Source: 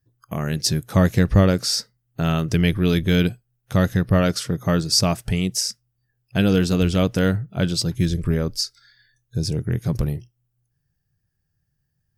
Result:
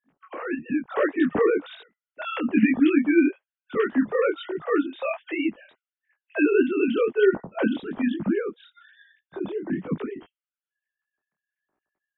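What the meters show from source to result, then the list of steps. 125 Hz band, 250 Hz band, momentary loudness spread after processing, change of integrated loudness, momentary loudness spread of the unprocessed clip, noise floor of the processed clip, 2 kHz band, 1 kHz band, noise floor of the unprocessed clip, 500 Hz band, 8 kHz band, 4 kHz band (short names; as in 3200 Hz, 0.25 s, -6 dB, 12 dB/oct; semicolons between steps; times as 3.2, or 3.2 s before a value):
-21.5 dB, -1.5 dB, 14 LU, -3.0 dB, 9 LU, under -85 dBFS, +0.5 dB, -3.0 dB, -74 dBFS, +1.0 dB, under -40 dB, -17.5 dB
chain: sine-wave speech; detuned doubles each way 38 cents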